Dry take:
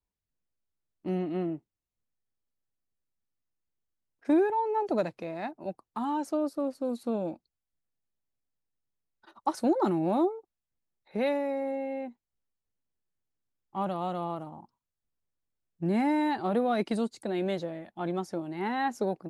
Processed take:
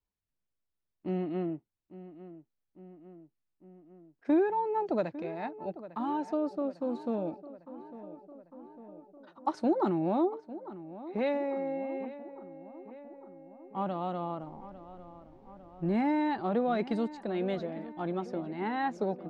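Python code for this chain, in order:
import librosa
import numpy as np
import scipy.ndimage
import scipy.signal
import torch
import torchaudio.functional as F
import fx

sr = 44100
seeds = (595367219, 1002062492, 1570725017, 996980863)

y = fx.dmg_noise_colour(x, sr, seeds[0], colour='brown', level_db=-57.0, at=(14.4, 15.99), fade=0.02)
y = fx.air_absorb(y, sr, metres=130.0)
y = fx.echo_filtered(y, sr, ms=852, feedback_pct=66, hz=2400.0, wet_db=-15.0)
y = y * librosa.db_to_amplitude(-1.5)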